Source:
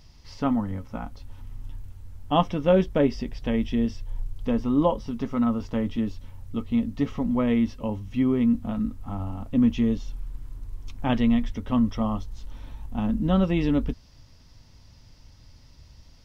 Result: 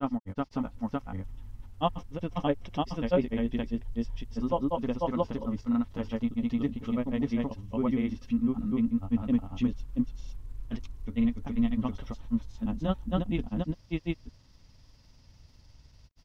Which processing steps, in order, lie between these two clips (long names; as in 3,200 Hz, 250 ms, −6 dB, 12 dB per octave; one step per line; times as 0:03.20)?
granular cloud 100 ms, grains 20 per second, spray 533 ms, pitch spread up and down by 0 semitones
level −4 dB